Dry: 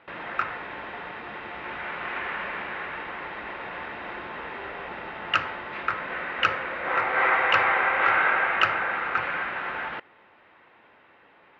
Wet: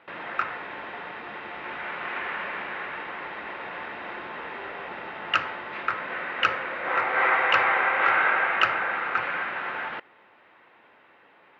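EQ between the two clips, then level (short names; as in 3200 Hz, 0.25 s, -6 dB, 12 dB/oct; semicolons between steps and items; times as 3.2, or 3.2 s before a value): HPF 150 Hz 6 dB/oct; 0.0 dB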